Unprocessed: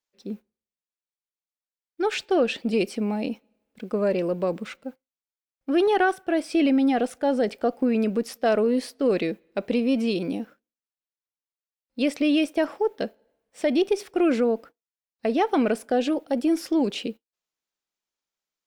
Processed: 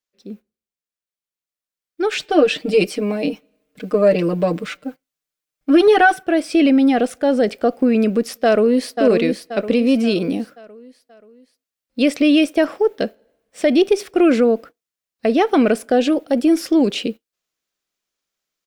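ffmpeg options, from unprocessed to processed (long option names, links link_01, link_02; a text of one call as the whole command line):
ffmpeg -i in.wav -filter_complex "[0:a]asettb=1/sr,asplit=3[link_01][link_02][link_03];[link_01]atrim=end=2.194[link_04];[link_02]atrim=start=2.19:end=6.23,asetpts=PTS-STARTPTS,afade=type=in:duration=0.004:curve=qsin,afade=type=out:start_time=4.036:duration=0.004:curve=qsin,aecho=1:1:6.6:0.97,atrim=end_sample=178164[link_05];[link_03]atrim=start=6.226[link_06];[link_04][link_05]acrossfade=duration=0.004:curve1=hsin:curve2=qsin[link_07];[link_07][link_06]acrossfade=duration=0.004:curve1=qsin:curve2=hsin,asplit=2[link_08][link_09];[link_09]afade=type=in:start_time=8.44:duration=0.01,afade=type=out:start_time=8.98:duration=0.01,aecho=0:1:530|1060|1590|2120|2650:0.501187|0.225534|0.10149|0.0456707|0.0205518[link_10];[link_08][link_10]amix=inputs=2:normalize=0,equalizer=frequency=890:width=5.2:gain=-7,dynaudnorm=framelen=140:gausssize=21:maxgain=8dB" out.wav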